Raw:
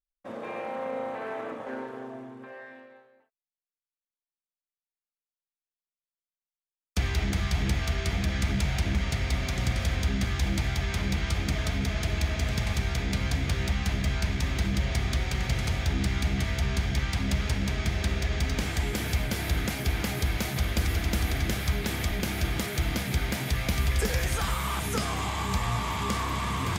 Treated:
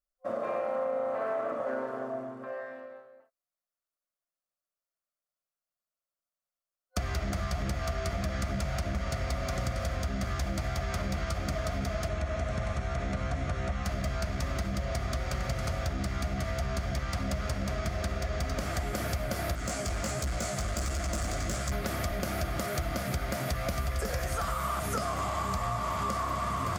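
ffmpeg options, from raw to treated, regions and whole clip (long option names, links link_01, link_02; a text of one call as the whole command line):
ffmpeg -i in.wav -filter_complex "[0:a]asettb=1/sr,asplit=3[link_01][link_02][link_03];[link_01]atrim=end=12.084[link_04];[link_02]atrim=start=12.08:end=13.85,asetpts=PTS-STARTPTS,afade=type=in:duration=0.004:curve=qsin,afade=type=out:start_time=1.766:duration=0.004:curve=qsin,lowpass=frequency=9900:width=0.5412,lowpass=frequency=9900:width=1.3066,bandreject=frequency=4800:width=9.6,acrossover=split=2700[link_05][link_06];[link_06]acompressor=threshold=-42dB:ratio=4:attack=1:release=60[link_07];[link_05][link_07]amix=inputs=2:normalize=0[link_08];[link_03]atrim=start=13.846[link_09];[link_04][link_08]acrossfade=duration=0.004:curve1=hsin:curve2=qsin[link_10];[link_10][link_09]acrossfade=duration=0.004:curve1=qsin:curve2=hsin,asettb=1/sr,asplit=3[link_11][link_12][link_13];[link_11]atrim=end=19.554[link_14];[link_12]atrim=start=19.55:end=21.72,asetpts=PTS-STARTPTS,afade=type=in:duration=0.004:curve=qsin,afade=type=out:start_time=2.166:duration=0.004:curve=qsin,flanger=delay=15.5:depth=4.9:speed=1.4,lowpass=frequency=7700:width_type=q:width=4.3,asoftclip=type=hard:threshold=-26.5dB[link_15];[link_13]atrim=start=21.716[link_16];[link_14][link_15]acrossfade=duration=0.004:curve1=hsin:curve2=qsin[link_17];[link_17][link_16]acrossfade=duration=0.004:curve1=qsin:curve2=hsin,superequalizer=8b=3.16:10b=2.24:12b=0.631:13b=0.562,acompressor=threshold=-28dB:ratio=6" out.wav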